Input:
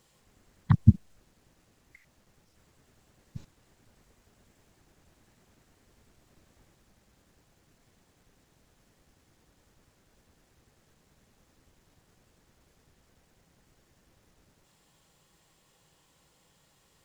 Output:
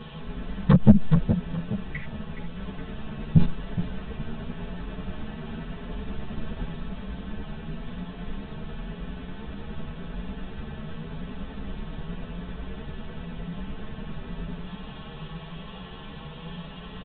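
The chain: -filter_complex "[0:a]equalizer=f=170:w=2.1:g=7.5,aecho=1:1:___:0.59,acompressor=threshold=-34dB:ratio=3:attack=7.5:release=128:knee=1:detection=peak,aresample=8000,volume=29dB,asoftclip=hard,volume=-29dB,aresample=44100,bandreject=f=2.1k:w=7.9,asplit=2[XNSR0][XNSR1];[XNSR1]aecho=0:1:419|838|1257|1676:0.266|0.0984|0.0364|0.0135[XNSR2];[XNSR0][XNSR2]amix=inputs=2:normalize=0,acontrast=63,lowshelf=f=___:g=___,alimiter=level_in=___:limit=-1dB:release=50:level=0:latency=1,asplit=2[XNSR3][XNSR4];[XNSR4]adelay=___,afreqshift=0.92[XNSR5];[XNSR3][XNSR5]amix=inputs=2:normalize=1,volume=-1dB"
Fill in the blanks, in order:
4.6, 82, 9, 21dB, 10.4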